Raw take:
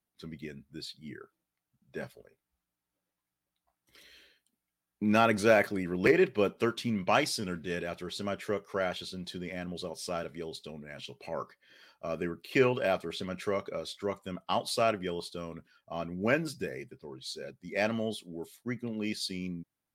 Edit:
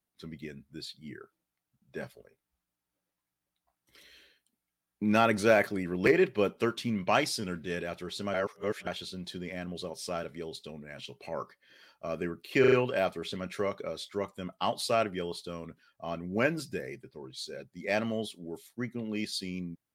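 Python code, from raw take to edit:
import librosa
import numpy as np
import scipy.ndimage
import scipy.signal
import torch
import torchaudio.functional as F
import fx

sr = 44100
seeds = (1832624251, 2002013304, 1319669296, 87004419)

y = fx.edit(x, sr, fx.reverse_span(start_s=8.34, length_s=0.53),
    fx.stutter(start_s=12.6, slice_s=0.04, count=4), tone=tone)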